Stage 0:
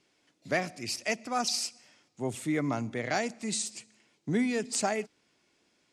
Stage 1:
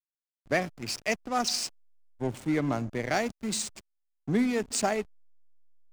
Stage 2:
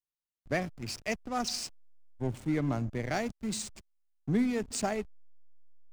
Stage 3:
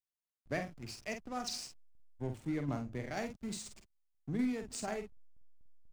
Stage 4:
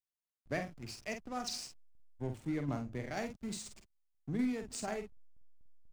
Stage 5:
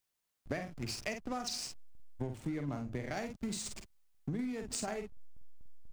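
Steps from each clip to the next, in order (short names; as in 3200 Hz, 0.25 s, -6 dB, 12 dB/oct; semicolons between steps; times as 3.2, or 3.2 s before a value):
backlash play -33.5 dBFS; gain +2.5 dB
low shelf 160 Hz +11.5 dB; gain -5.5 dB
tremolo saw down 4.1 Hz, depth 50%; doubler 48 ms -7 dB; gain -5 dB
nothing audible
compressor 10:1, threshold -45 dBFS, peak gain reduction 15.5 dB; gain +10.5 dB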